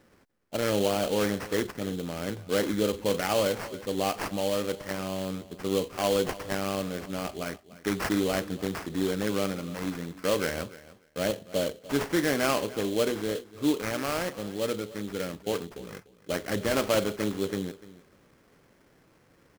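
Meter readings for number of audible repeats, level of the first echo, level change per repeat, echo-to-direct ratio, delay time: 2, −18.0 dB, −16.5 dB, −18.0 dB, 295 ms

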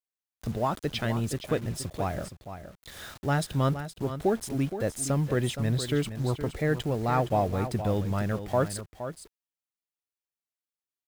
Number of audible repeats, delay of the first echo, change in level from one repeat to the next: 1, 468 ms, repeats not evenly spaced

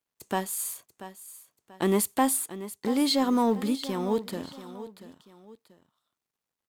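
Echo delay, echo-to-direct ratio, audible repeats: 686 ms, −13.5 dB, 2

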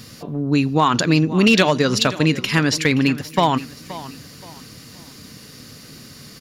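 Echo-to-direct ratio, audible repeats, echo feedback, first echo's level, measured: −15.5 dB, 2, 32%, −16.0 dB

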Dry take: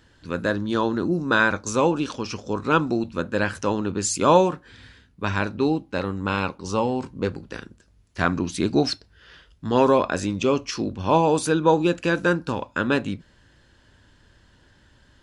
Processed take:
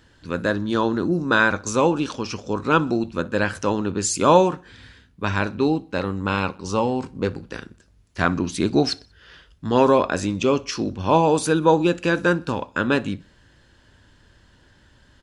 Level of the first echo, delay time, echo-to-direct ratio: −24.0 dB, 62 ms, −23.0 dB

